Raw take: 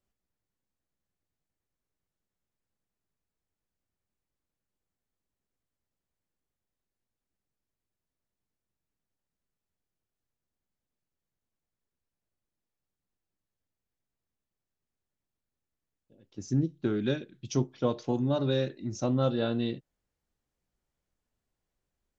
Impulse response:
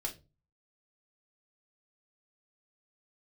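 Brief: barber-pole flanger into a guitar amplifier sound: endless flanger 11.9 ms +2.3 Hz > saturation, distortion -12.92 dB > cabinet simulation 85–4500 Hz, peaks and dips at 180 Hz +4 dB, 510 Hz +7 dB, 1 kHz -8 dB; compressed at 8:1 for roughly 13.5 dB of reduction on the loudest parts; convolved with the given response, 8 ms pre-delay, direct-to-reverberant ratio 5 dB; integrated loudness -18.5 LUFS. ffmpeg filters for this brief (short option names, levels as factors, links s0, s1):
-filter_complex "[0:a]acompressor=threshold=0.0158:ratio=8,asplit=2[s0][s1];[1:a]atrim=start_sample=2205,adelay=8[s2];[s1][s2]afir=irnorm=-1:irlink=0,volume=0.531[s3];[s0][s3]amix=inputs=2:normalize=0,asplit=2[s4][s5];[s5]adelay=11.9,afreqshift=2.3[s6];[s4][s6]amix=inputs=2:normalize=1,asoftclip=threshold=0.0158,highpass=85,equalizer=f=180:t=q:w=4:g=4,equalizer=f=510:t=q:w=4:g=7,equalizer=f=1000:t=q:w=4:g=-8,lowpass=f=4500:w=0.5412,lowpass=f=4500:w=1.3066,volume=17.8"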